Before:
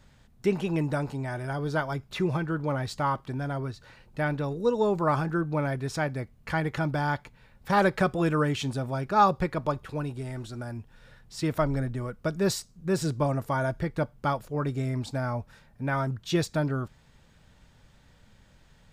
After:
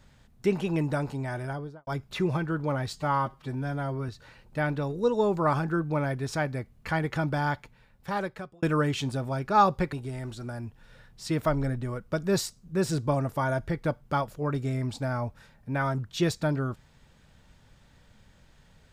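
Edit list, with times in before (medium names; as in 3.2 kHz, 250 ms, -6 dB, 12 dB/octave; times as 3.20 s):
1.39–1.87 s: studio fade out
2.93–3.70 s: stretch 1.5×
7.09–8.24 s: fade out
9.54–10.05 s: delete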